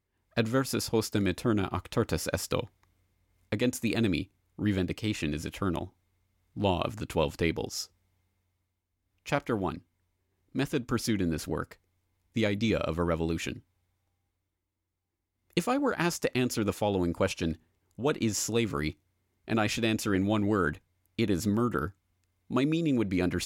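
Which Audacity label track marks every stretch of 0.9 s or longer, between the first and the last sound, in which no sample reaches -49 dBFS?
7.860000	9.260000	silence
13.600000	15.500000	silence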